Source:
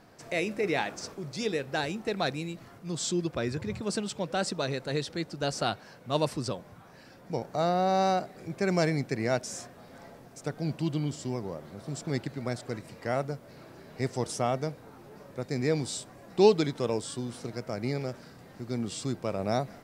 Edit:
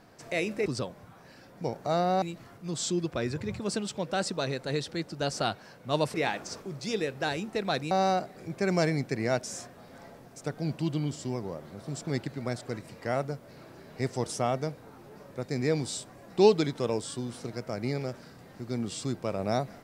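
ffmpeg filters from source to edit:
ffmpeg -i in.wav -filter_complex "[0:a]asplit=5[link_01][link_02][link_03][link_04][link_05];[link_01]atrim=end=0.662[link_06];[link_02]atrim=start=6.348:end=7.912[link_07];[link_03]atrim=start=2.428:end=6.352[link_08];[link_04]atrim=start=0.658:end=2.432[link_09];[link_05]atrim=start=7.908[link_10];[link_06][link_07]acrossfade=duration=0.004:curve1=hsin:curve2=hsin[link_11];[link_11][link_08]acrossfade=duration=0.004:curve1=hsin:curve2=hsin[link_12];[link_12][link_09]acrossfade=duration=0.004:curve1=hsin:curve2=hsin[link_13];[link_13][link_10]acrossfade=duration=0.004:curve1=hsin:curve2=hsin" out.wav

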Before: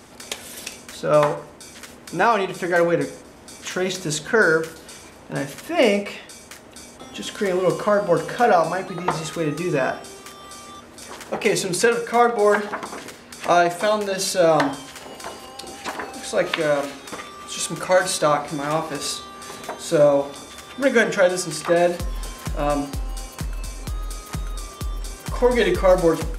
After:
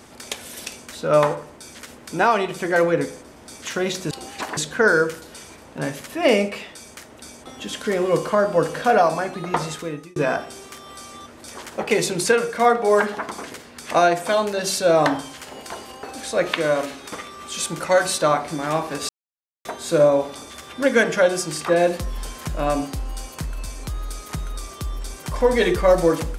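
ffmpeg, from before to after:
ffmpeg -i in.wav -filter_complex "[0:a]asplit=7[link_01][link_02][link_03][link_04][link_05][link_06][link_07];[link_01]atrim=end=4.112[link_08];[link_02]atrim=start=15.568:end=16.032[link_09];[link_03]atrim=start=4.108:end=9.7,asetpts=PTS-STARTPTS,afade=type=out:start_time=5.082:duration=0.51[link_10];[link_04]atrim=start=9.7:end=15.572,asetpts=PTS-STARTPTS,afade=type=in:duration=0.004:curve=hsin[link_11];[link_05]atrim=start=16.028:end=19.09,asetpts=PTS-STARTPTS,afade=type=out:start_time=3.058:duration=0.004:curve=hsin[link_12];[link_06]atrim=start=19.09:end=19.65,asetpts=PTS-STARTPTS,volume=0[link_13];[link_07]atrim=start=19.65,asetpts=PTS-STARTPTS,afade=type=in:duration=0.004:curve=hsin[link_14];[link_08][link_09]acrossfade=duration=0.004:curve1=hsin:curve2=hsin[link_15];[link_10][link_11]concat=n=2:v=0:a=1[link_16];[link_15][link_16]acrossfade=duration=0.004:curve1=hsin:curve2=hsin[link_17];[link_12][link_13][link_14]concat=n=3:v=0:a=1[link_18];[link_17][link_18]acrossfade=duration=0.004:curve1=hsin:curve2=hsin" out.wav

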